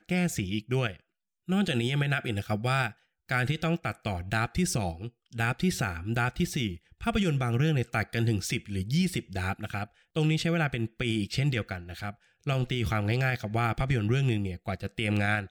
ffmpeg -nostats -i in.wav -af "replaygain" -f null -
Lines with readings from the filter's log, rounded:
track_gain = +10.8 dB
track_peak = 0.110